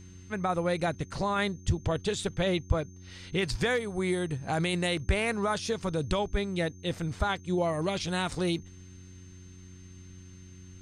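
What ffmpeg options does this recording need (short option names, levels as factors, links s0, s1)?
-af "bandreject=f=91.5:t=h:w=4,bandreject=f=183:t=h:w=4,bandreject=f=274.5:t=h:w=4,bandreject=f=366:t=h:w=4,bandreject=f=6300:w=30"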